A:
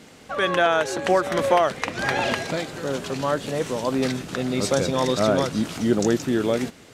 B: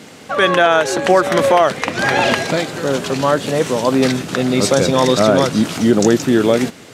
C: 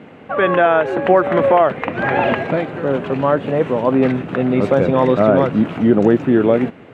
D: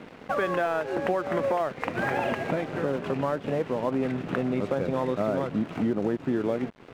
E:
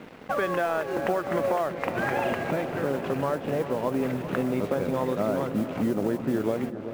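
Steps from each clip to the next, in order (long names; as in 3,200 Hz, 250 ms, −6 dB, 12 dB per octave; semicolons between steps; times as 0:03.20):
high-pass filter 95 Hz; boost into a limiter +10 dB; level −1 dB
drawn EQ curve 720 Hz 0 dB, 2,700 Hz −6 dB, 5,200 Hz −30 dB
downward compressor 4 to 1, threshold −25 dBFS, peak gain reduction 15 dB; dead-zone distortion −43.5 dBFS
noise that follows the level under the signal 26 dB; feedback echo with a low-pass in the loop 389 ms, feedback 78%, low-pass 2,300 Hz, level −12 dB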